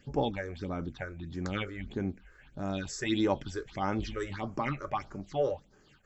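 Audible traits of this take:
phaser sweep stages 6, 1.6 Hz, lowest notch 200–3,600 Hz

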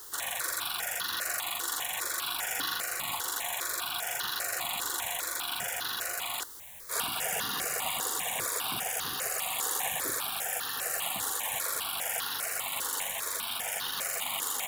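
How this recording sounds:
a quantiser's noise floor 8 bits, dither triangular
notches that jump at a steady rate 5 Hz 650–2,300 Hz

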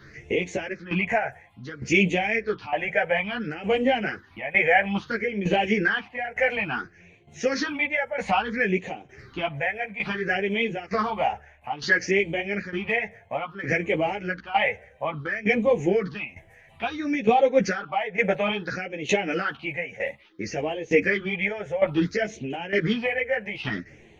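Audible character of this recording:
phaser sweep stages 6, 0.59 Hz, lowest notch 300–1,400 Hz
tremolo saw down 1.1 Hz, depth 80%
a shimmering, thickened sound

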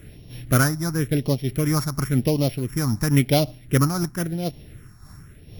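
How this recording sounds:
a buzz of ramps at a fixed pitch in blocks of 8 samples
phaser sweep stages 4, 0.94 Hz, lowest notch 480–1,400 Hz
amplitude modulation by smooth noise

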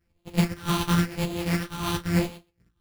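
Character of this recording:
a buzz of ramps at a fixed pitch in blocks of 256 samples
phaser sweep stages 6, 0.95 Hz, lowest notch 520–1,500 Hz
aliases and images of a low sample rate 7,200 Hz, jitter 0%
a shimmering, thickened sound

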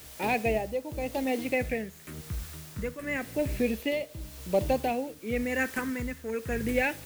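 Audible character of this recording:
phaser sweep stages 4, 0.29 Hz, lowest notch 710–1,500 Hz
a quantiser's noise floor 8 bits, dither triangular
tremolo triangle 0.92 Hz, depth 70%

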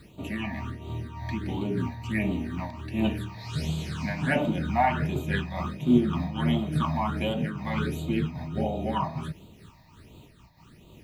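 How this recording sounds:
a quantiser's noise floor 10 bits, dither none
phaser sweep stages 8, 1.4 Hz, lowest notch 390–1,700 Hz
amplitude modulation by smooth noise

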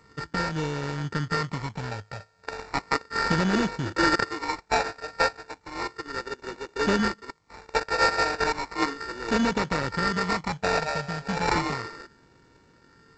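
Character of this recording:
a buzz of ramps at a fixed pitch in blocks of 32 samples
phaser sweep stages 12, 0.34 Hz, lowest notch 330–1,000 Hz
aliases and images of a low sample rate 3,200 Hz, jitter 0%
G.722

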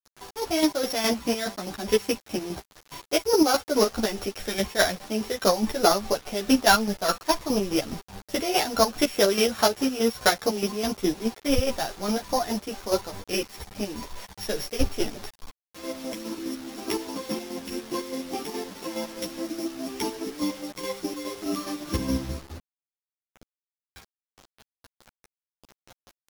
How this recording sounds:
a buzz of ramps at a fixed pitch in blocks of 8 samples
chopped level 4.8 Hz, depth 60%, duty 40%
a quantiser's noise floor 8 bits, dither none
a shimmering, thickened sound

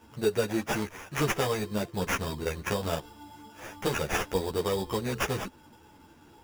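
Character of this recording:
aliases and images of a low sample rate 4,200 Hz, jitter 0%
a shimmering, thickened sound

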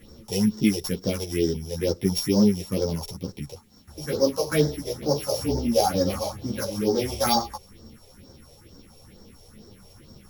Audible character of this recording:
a buzz of ramps at a fixed pitch in blocks of 8 samples
phaser sweep stages 4, 2.2 Hz, lowest notch 240–2,600 Hz
a quantiser's noise floor 12 bits, dither triangular
a shimmering, thickened sound

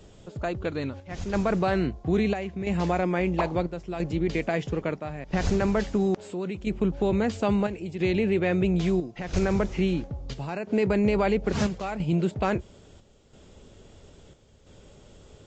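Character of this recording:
chopped level 0.75 Hz, depth 60%, duty 75%
a quantiser's noise floor 12 bits, dither triangular
Ogg Vorbis

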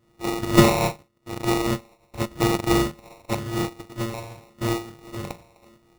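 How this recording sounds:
a buzz of ramps at a fixed pitch in blocks of 128 samples
phaser sweep stages 8, 0.87 Hz, lowest notch 430–1,200 Hz
aliases and images of a low sample rate 1,600 Hz, jitter 0%
amplitude modulation by smooth noise

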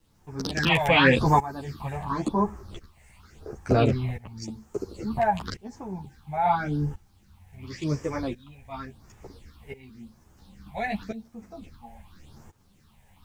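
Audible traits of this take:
tremolo saw up 0.72 Hz, depth 90%
phaser sweep stages 6, 0.9 Hz, lowest notch 320–4,000 Hz
a quantiser's noise floor 12 bits, dither none
a shimmering, thickened sound

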